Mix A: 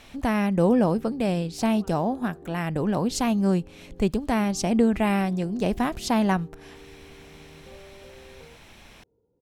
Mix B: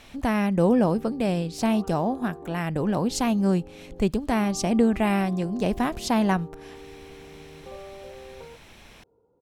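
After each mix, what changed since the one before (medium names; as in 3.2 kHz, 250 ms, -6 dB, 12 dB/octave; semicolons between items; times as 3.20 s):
background: add peaking EQ 1.2 kHz +13.5 dB 2.4 oct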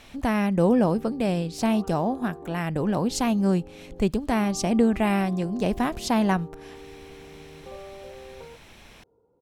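no change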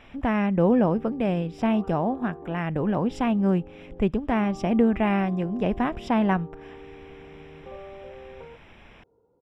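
master: add Savitzky-Golay filter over 25 samples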